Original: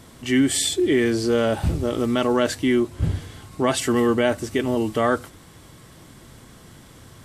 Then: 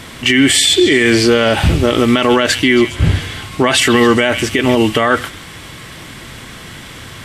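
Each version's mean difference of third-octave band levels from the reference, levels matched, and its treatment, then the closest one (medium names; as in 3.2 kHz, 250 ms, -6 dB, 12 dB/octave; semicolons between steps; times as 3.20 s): 4.5 dB: peaking EQ 2.4 kHz +11 dB 1.7 oct; on a send: repeats whose band climbs or falls 136 ms, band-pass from 3 kHz, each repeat 0.7 oct, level -11 dB; on the sum: loudness maximiser +12 dB; trim -1 dB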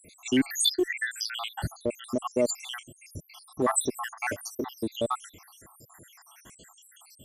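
14.5 dB: random holes in the spectrogram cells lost 82%; in parallel at -10.5 dB: one-sided clip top -24 dBFS; on the sum: tilt EQ +2 dB/octave; trim -2 dB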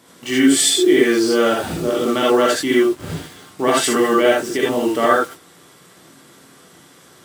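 5.5 dB: high-pass 250 Hz 12 dB/octave; in parallel at -4 dB: bit crusher 6-bit; on the sum: gated-style reverb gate 100 ms rising, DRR -4 dB; trim -3 dB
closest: first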